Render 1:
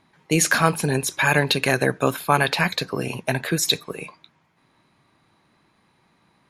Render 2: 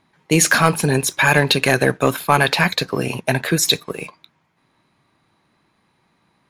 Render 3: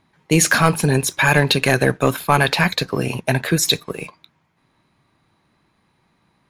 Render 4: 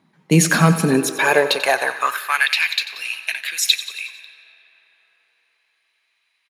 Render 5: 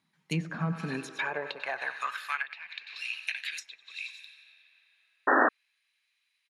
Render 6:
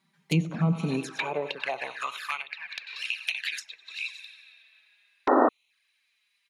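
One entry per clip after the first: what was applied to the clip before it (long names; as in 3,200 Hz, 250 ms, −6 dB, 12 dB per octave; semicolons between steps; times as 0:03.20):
leveller curve on the samples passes 1; level +1 dB
low-shelf EQ 110 Hz +7.5 dB; level −1 dB
repeating echo 91 ms, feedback 59%, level −14 dB; convolution reverb RT60 5.6 s, pre-delay 105 ms, DRR 16 dB; high-pass filter sweep 180 Hz → 2,500 Hz, 0:00.72–0:02.61; level −2 dB
guitar amp tone stack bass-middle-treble 5-5-5; treble cut that deepens with the level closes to 860 Hz, closed at −23.5 dBFS; sound drawn into the spectrogram noise, 0:05.27–0:05.49, 230–1,900 Hz −22 dBFS
flanger swept by the level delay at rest 5.2 ms, full sweep at −31 dBFS; level +7 dB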